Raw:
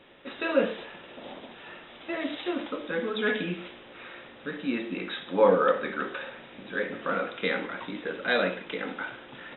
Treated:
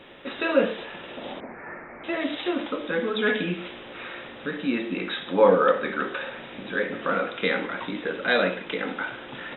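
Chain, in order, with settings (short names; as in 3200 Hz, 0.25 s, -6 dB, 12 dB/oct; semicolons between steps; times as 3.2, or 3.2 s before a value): 1.4–2.04 steep low-pass 2300 Hz 96 dB/oct; in parallel at -2.5 dB: compressor, threshold -41 dBFS, peak gain reduction 23.5 dB; on the sum: gain +2.5 dB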